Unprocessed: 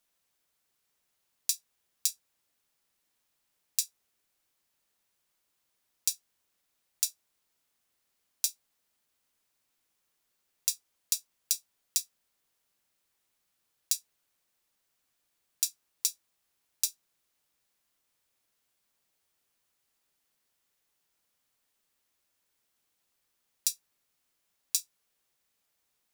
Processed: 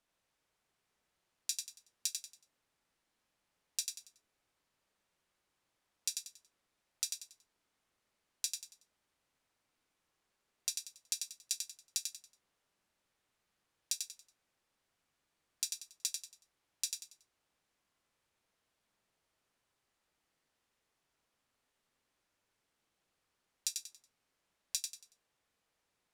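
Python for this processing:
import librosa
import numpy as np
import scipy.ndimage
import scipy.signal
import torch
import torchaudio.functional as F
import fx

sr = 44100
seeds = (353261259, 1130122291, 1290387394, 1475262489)

y = scipy.signal.sosfilt(scipy.signal.butter(2, 11000.0, 'lowpass', fs=sr, output='sos'), x)
y = fx.high_shelf(y, sr, hz=3400.0, db=-10.0)
y = fx.echo_feedback(y, sr, ms=93, feedback_pct=31, wet_db=-5.0)
y = y * librosa.db_to_amplitude(1.5)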